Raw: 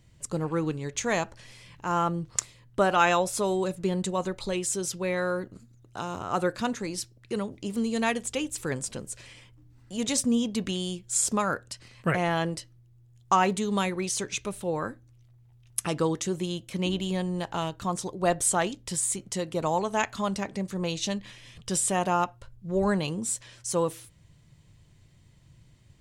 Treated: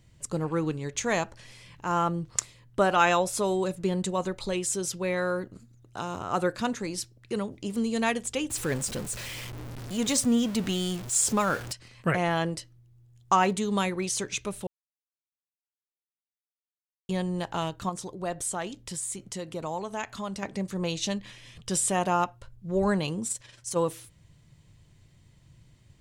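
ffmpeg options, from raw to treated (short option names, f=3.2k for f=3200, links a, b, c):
-filter_complex "[0:a]asettb=1/sr,asplit=3[a][b][c];[a]atrim=end=8.504[d];[b]atrim=start=8.5:end=11.73,asetpts=PTS-STARTPTS,afade=t=in:d=0.004:c=qsin,afade=t=out:st=3.226:d=0.004:c=qsin,aeval=exprs='val(0)+0.5*0.02*sgn(val(0))':c=same[e];[c]atrim=start=11.726[f];[d][e]acrossfade=d=0.004:c1=hsin:c2=qsin[g];[g][f]acrossfade=d=0.004:c1=qsin:c2=hsin,asettb=1/sr,asplit=3[h][i][j];[h]atrim=end=17.894[k];[i]atrim=start=17.89:end=20.43,asetpts=PTS-STARTPTS,afade=t=in:d=0.004:c=qsin,afade=t=out:st=2.536:d=0.004:c=qsin,acompressor=threshold=-40dB:ratio=1.5:attack=3.2:release=140:knee=1:detection=peak[l];[j]atrim=start=20.426[m];[k][l]acrossfade=d=0.004:c1=hsin:c2=qsin[n];[n][m]acrossfade=d=0.004:c1=qsin:c2=hsin,asettb=1/sr,asplit=3[o][p][q];[o]atrim=end=23.274[r];[p]atrim=start=23.27:end=23.77,asetpts=PTS-STARTPTS,afade=t=in:d=0.004:c=qsin,afade=t=out:st=0.496:d=0.004:c=qsin,tremolo=f=22:d=0.571[s];[q]atrim=start=23.766[t];[r][s]acrossfade=d=0.004:c1=hsin:c2=qsin[u];[u][t]acrossfade=d=0.004:c1=qsin:c2=hsin,asplit=3[v][w][x];[v]atrim=end=14.67,asetpts=PTS-STARTPTS,afade=t=out:st=14.666:d=0.004:c=hsin[y];[w]atrim=start=14.67:end=17.09,asetpts=PTS-STARTPTS,volume=0[z];[x]atrim=start=17.09,asetpts=PTS-STARTPTS,afade=t=in:d=0.004:c=hsin[aa];[y][z][aa]concat=n=3:v=0:a=1"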